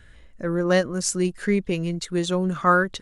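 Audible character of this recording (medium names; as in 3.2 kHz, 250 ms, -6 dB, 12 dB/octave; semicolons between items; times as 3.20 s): noise floor -49 dBFS; spectral tilt -5.0 dB/octave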